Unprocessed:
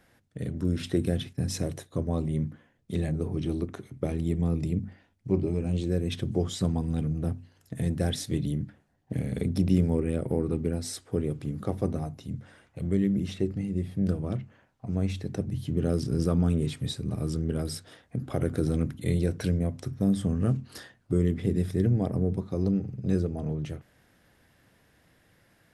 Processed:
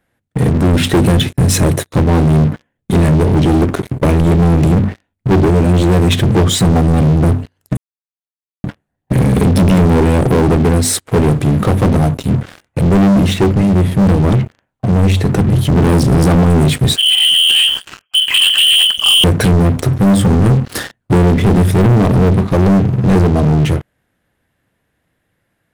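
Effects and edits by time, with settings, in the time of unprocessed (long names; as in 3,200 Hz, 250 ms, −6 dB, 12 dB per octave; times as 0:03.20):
0:07.77–0:08.64: silence
0:16.96–0:19.24: voice inversion scrambler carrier 3,200 Hz
whole clip: parametric band 5,200 Hz −7.5 dB 0.64 octaves; leveller curve on the samples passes 5; level +6.5 dB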